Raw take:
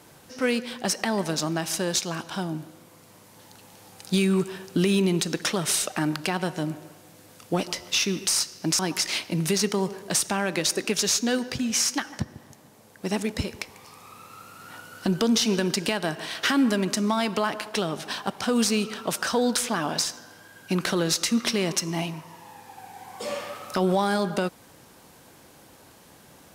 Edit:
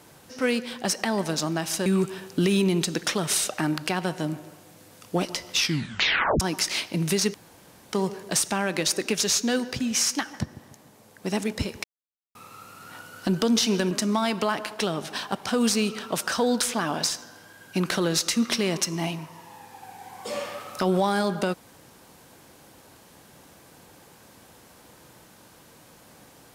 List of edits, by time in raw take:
0:01.86–0:04.24: remove
0:07.96: tape stop 0.82 s
0:09.72: splice in room tone 0.59 s
0:13.63–0:14.14: silence
0:15.70–0:16.86: remove

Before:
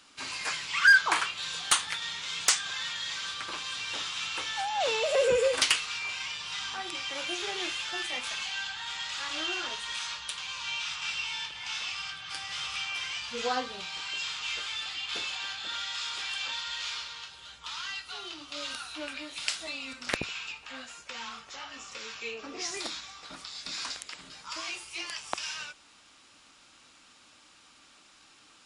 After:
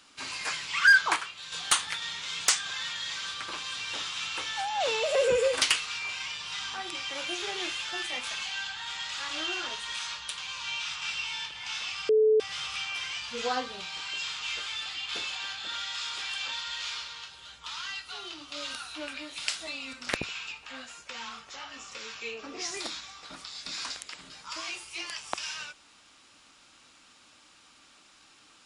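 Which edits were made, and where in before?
0:01.16–0:01.52: clip gain −7 dB
0:12.09–0:12.40: beep over 434 Hz −18 dBFS

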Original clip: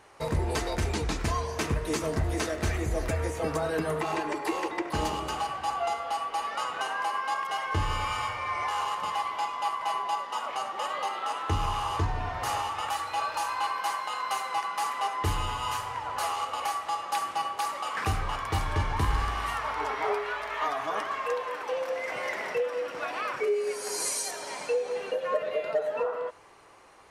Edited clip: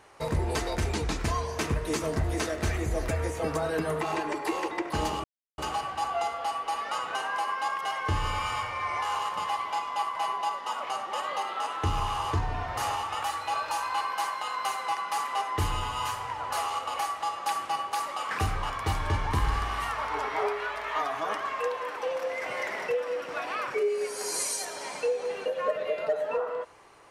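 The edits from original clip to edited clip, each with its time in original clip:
0:05.24: splice in silence 0.34 s

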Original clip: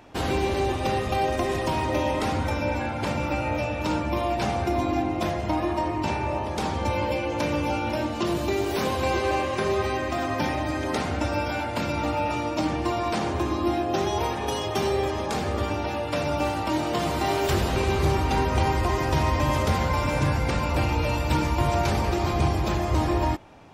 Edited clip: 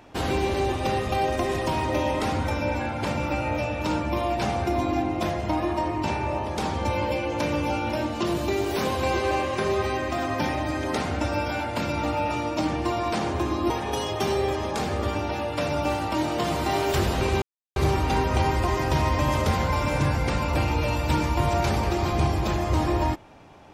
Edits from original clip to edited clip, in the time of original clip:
0:13.70–0:14.25: remove
0:17.97: splice in silence 0.34 s

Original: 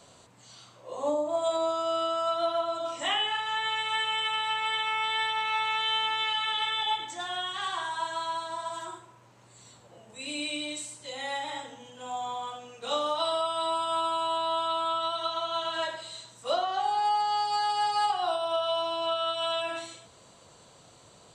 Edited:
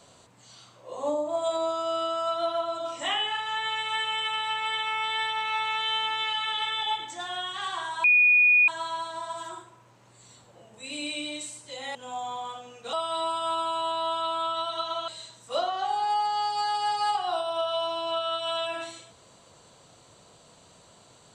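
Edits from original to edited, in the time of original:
0:08.04: insert tone 2,460 Hz −15.5 dBFS 0.64 s
0:11.31–0:11.93: remove
0:12.91–0:13.39: remove
0:15.54–0:16.03: remove

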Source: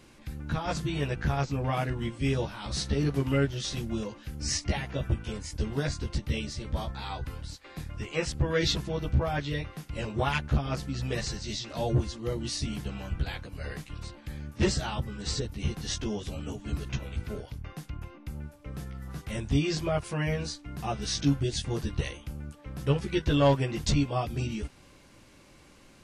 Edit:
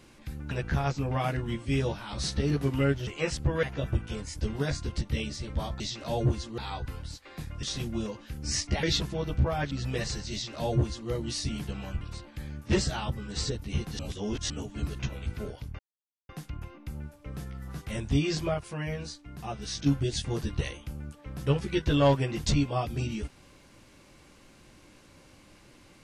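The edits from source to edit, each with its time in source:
0:00.51–0:01.04: remove
0:03.60–0:04.80: swap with 0:08.02–0:08.58
0:09.46–0:10.88: remove
0:11.49–0:12.27: duplicate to 0:06.97
0:13.18–0:13.91: remove
0:15.89–0:16.40: reverse
0:17.69: splice in silence 0.50 s
0:19.94–0:21.26: clip gain −4.5 dB

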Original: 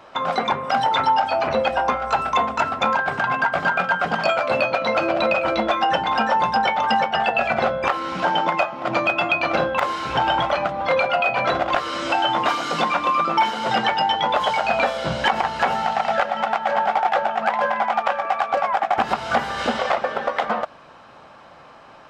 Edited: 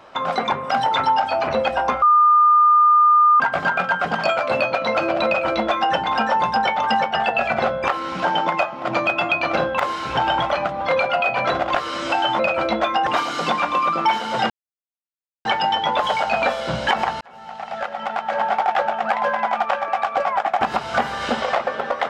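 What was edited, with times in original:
0:02.02–0:03.40: beep over 1,210 Hz −10 dBFS
0:05.26–0:05.94: duplicate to 0:12.39
0:13.82: splice in silence 0.95 s
0:15.58–0:16.92: fade in

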